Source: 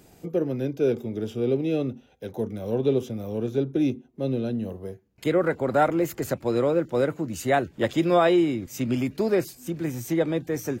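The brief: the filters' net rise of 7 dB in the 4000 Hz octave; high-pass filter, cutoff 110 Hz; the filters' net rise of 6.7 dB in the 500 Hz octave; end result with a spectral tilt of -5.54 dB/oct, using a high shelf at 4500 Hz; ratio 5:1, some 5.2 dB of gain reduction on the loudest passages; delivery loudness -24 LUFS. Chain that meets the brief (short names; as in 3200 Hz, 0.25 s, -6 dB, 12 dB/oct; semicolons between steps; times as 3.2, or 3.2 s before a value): HPF 110 Hz; bell 500 Hz +8 dB; bell 4000 Hz +6.5 dB; high shelf 4500 Hz +4 dB; compressor 5:1, threshold -16 dBFS; gain -0.5 dB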